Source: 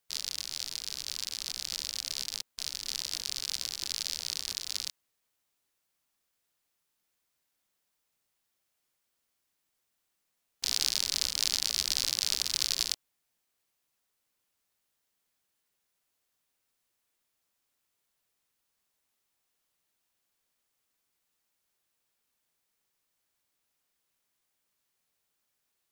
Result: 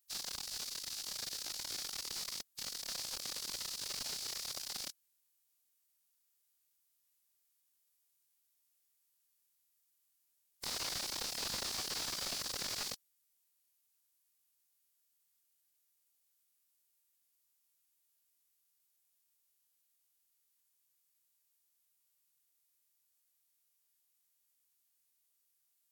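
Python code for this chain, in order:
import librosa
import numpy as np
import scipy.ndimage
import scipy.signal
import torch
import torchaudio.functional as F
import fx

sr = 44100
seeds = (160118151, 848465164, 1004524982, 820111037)

y = F.preemphasis(torch.from_numpy(x), 0.8).numpy()
y = fx.pitch_keep_formants(y, sr, semitones=-3.5)
y = fx.slew_limit(y, sr, full_power_hz=62.0)
y = y * librosa.db_to_amplitude(1.0)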